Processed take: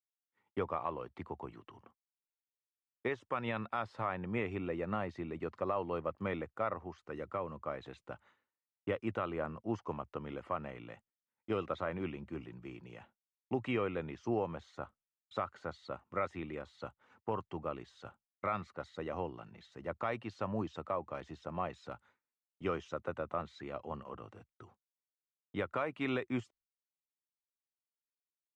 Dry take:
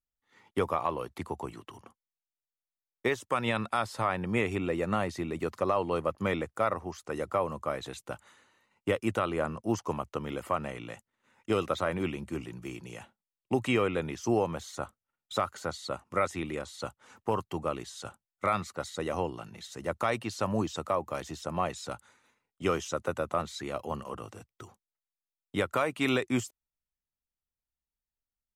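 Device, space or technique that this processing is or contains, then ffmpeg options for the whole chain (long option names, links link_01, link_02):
hearing-loss simulation: -filter_complex "[0:a]lowpass=2700,agate=range=-33dB:threshold=-53dB:ratio=3:detection=peak,asettb=1/sr,asplit=3[link_01][link_02][link_03];[link_01]atrim=end=7.024[link_04];[link_02]atrim=start=7.02:end=7.61,asetpts=PTS-STARTPTS,afade=type=in:duration=0.004:curve=qsin,afade=type=out:start_time=0.586:duration=0.004:curve=qsin,equalizer=frequency=750:width=1.4:gain=-4.5[link_05];[link_03]atrim=start=7.606[link_06];[link_04][link_05]acrossfade=duration=0.004:curve1=hsin:curve2=qsin[link_07];[link_07][link_06]acrossfade=duration=0.004:curve1=qsin:curve2=hsin,volume=-7dB"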